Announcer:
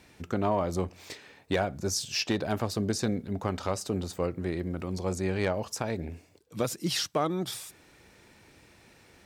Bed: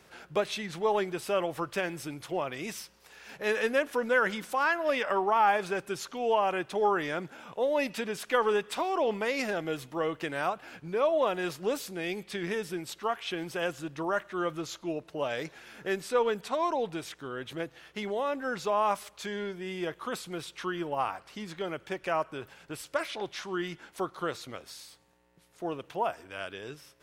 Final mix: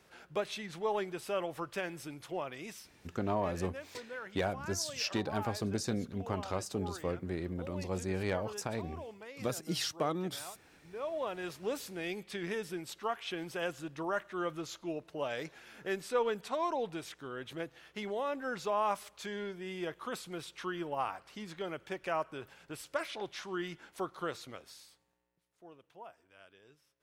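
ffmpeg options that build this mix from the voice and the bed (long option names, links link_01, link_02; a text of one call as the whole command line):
ffmpeg -i stem1.wav -i stem2.wav -filter_complex "[0:a]adelay=2850,volume=-5.5dB[link_01];[1:a]volume=8dB,afade=type=out:start_time=2.4:duration=0.96:silence=0.237137,afade=type=in:start_time=10.75:duration=1.14:silence=0.199526,afade=type=out:start_time=24.4:duration=1.01:silence=0.16788[link_02];[link_01][link_02]amix=inputs=2:normalize=0" out.wav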